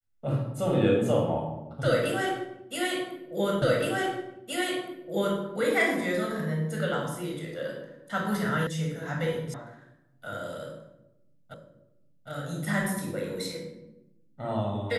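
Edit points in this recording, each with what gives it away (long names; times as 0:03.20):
0:03.62: the same again, the last 1.77 s
0:08.67: cut off before it has died away
0:09.54: cut off before it has died away
0:11.54: the same again, the last 0.76 s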